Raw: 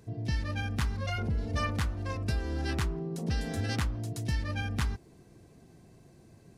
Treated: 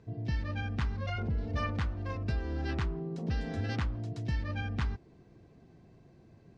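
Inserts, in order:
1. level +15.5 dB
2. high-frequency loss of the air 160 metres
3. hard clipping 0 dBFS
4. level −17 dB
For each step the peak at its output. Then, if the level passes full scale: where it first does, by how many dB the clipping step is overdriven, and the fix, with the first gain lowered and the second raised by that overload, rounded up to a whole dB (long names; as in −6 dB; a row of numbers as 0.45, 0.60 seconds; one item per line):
−5.0, −5.5, −5.5, −22.5 dBFS
no step passes full scale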